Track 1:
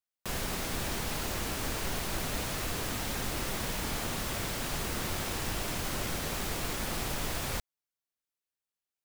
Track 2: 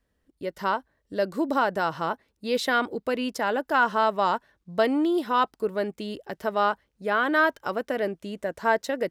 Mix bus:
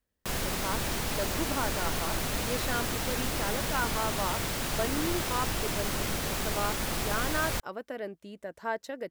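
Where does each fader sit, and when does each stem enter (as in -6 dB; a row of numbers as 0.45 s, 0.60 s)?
+2.5 dB, -10.0 dB; 0.00 s, 0.00 s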